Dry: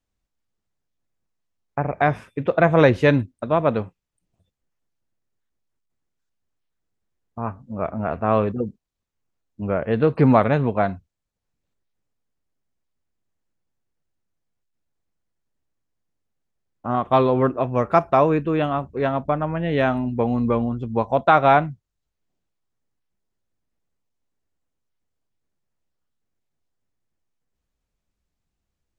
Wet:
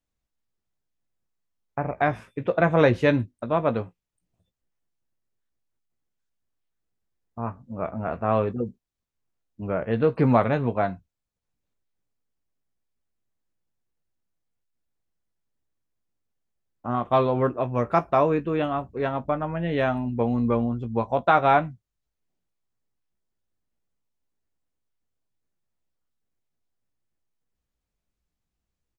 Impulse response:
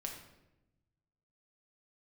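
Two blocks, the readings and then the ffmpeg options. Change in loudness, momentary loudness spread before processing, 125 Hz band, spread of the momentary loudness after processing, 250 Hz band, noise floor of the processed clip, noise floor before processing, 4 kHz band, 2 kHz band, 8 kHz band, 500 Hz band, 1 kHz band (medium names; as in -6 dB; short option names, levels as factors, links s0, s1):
-4.0 dB, 14 LU, -4.0 dB, 14 LU, -4.0 dB, -84 dBFS, -81 dBFS, -3.5 dB, -3.5 dB, no reading, -3.5 dB, -3.5 dB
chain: -filter_complex "[0:a]asplit=2[s0][s1];[s1]adelay=17,volume=0.316[s2];[s0][s2]amix=inputs=2:normalize=0,volume=0.631"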